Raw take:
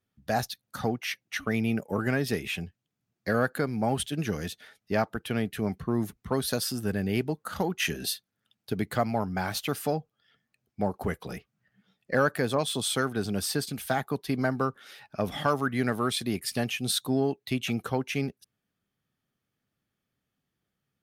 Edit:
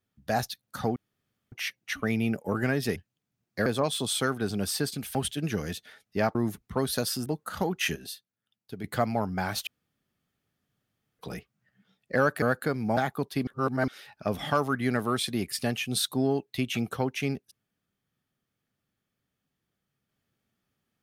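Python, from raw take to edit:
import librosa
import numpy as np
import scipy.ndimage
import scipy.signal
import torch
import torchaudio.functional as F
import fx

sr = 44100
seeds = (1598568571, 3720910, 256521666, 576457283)

y = fx.edit(x, sr, fx.insert_room_tone(at_s=0.96, length_s=0.56),
    fx.cut(start_s=2.4, length_s=0.25),
    fx.swap(start_s=3.35, length_s=0.55, other_s=12.41, other_length_s=1.49),
    fx.cut(start_s=5.1, length_s=0.8),
    fx.cut(start_s=6.81, length_s=0.44),
    fx.clip_gain(start_s=7.95, length_s=0.88, db=-9.0),
    fx.room_tone_fill(start_s=9.66, length_s=1.52),
    fx.reverse_span(start_s=14.4, length_s=0.41), tone=tone)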